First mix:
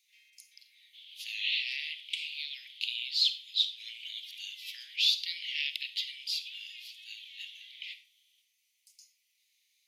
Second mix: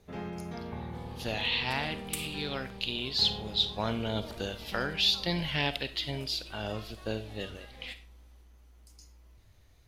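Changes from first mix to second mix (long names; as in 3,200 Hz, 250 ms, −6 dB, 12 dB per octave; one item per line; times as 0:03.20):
first sound +8.0 dB
second sound: remove low-pass with resonance 3,300 Hz, resonance Q 4.6
master: remove Butterworth high-pass 2,100 Hz 72 dB per octave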